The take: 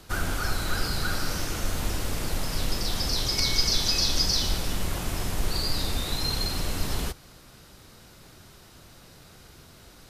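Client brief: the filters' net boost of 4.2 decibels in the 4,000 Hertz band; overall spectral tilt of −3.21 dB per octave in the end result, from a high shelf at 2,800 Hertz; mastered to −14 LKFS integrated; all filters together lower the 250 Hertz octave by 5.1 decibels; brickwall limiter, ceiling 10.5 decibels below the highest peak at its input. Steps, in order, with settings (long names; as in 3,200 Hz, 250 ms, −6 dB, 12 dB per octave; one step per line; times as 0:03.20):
parametric band 250 Hz −7.5 dB
high-shelf EQ 2,800 Hz −4 dB
parametric band 4,000 Hz +8.5 dB
level +13.5 dB
brickwall limiter −4 dBFS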